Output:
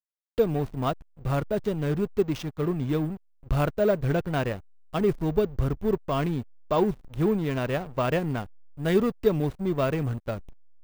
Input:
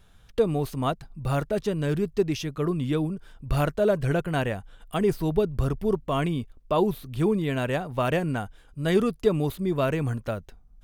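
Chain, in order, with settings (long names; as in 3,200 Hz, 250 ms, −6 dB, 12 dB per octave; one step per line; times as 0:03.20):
slack as between gear wheels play −29 dBFS
bad sample-rate conversion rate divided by 2×, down none, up hold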